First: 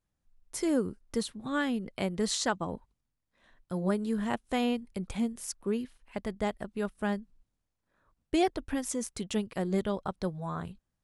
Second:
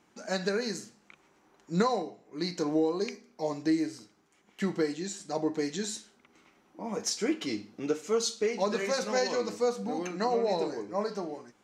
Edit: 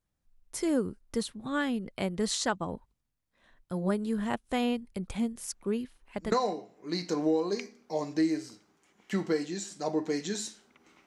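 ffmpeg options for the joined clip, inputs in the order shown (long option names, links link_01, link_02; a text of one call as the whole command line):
ffmpeg -i cue0.wav -i cue1.wav -filter_complex "[1:a]asplit=2[link_01][link_02];[0:a]apad=whole_dur=11.06,atrim=end=11.06,atrim=end=6.322[link_03];[link_02]atrim=start=1.808:end=6.55[link_04];[link_01]atrim=start=0.85:end=1.81,asetpts=PTS-STARTPTS,volume=-17dB,afade=type=in:duration=0.004:curve=hsin,afade=type=out:start_time=0.956:duration=0.004:curve=hsin,adelay=5360[link_05];[link_03][link_04]acrossfade=duration=0.004:curve1=hsin:curve2=hsin[link_06];[link_06][link_05]amix=inputs=2:normalize=0" out.wav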